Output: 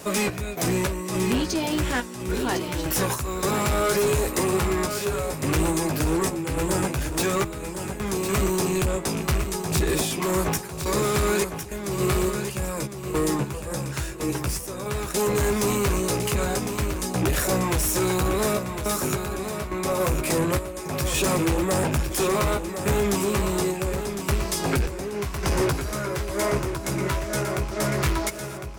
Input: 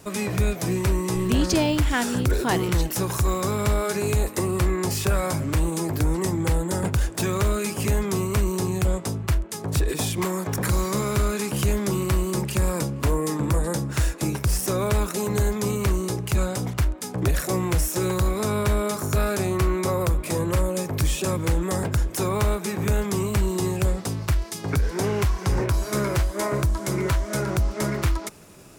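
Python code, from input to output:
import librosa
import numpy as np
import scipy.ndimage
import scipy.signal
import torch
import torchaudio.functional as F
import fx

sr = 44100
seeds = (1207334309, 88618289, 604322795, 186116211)

p1 = fx.rattle_buzz(x, sr, strikes_db=-26.0, level_db=-32.0)
p2 = fx.highpass(p1, sr, hz=99.0, slope=6)
p3 = fx.low_shelf(p2, sr, hz=130.0, db=-5.0)
p4 = fx.rider(p3, sr, range_db=10, speed_s=0.5)
p5 = p3 + (p4 * librosa.db_to_amplitude(1.0))
p6 = fx.tremolo_random(p5, sr, seeds[0], hz=3.5, depth_pct=95)
p7 = fx.chorus_voices(p6, sr, voices=6, hz=0.18, base_ms=14, depth_ms=2.0, mix_pct=35)
p8 = 10.0 ** (-23.5 / 20.0) * np.tanh(p7 / 10.0 ** (-23.5 / 20.0))
p9 = p8 + fx.echo_feedback(p8, sr, ms=1056, feedback_pct=29, wet_db=-8, dry=0)
y = p9 * librosa.db_to_amplitude(5.0)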